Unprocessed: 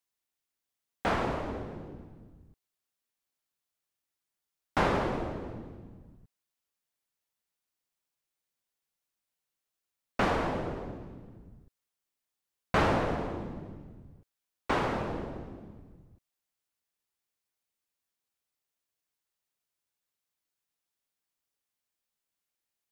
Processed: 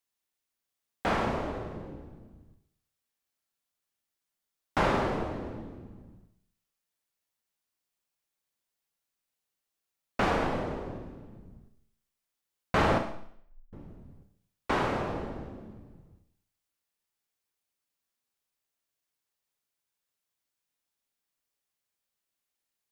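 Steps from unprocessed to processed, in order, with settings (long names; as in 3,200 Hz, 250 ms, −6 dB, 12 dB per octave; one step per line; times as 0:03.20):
0:12.98–0:13.73: inverse Chebyshev band-stop filter 110–5,400 Hz, stop band 70 dB
four-comb reverb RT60 0.64 s, combs from 28 ms, DRR 5.5 dB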